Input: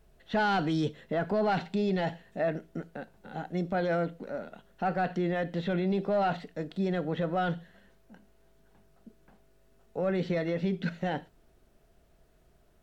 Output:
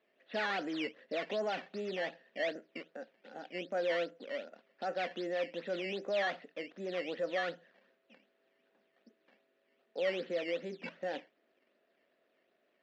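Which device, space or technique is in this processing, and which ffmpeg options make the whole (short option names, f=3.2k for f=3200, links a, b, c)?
circuit-bent sampling toy: -af "equalizer=f=125:t=o:w=1:g=-8,equalizer=f=250:t=o:w=1:g=11,equalizer=f=500:t=o:w=1:g=-3,equalizer=f=1k:t=o:w=1:g=-3,equalizer=f=2k:t=o:w=1:g=-6,equalizer=f=4k:t=o:w=1:g=-5,acrusher=samples=12:mix=1:aa=0.000001:lfo=1:lforange=12:lforate=2.6,highpass=520,equalizer=f=540:t=q:w=4:g=9,equalizer=f=890:t=q:w=4:g=-4,equalizer=f=1.8k:t=q:w=4:g=8,equalizer=f=2.6k:t=q:w=4:g=4,lowpass=f=4.3k:w=0.5412,lowpass=f=4.3k:w=1.3066,volume=-4.5dB"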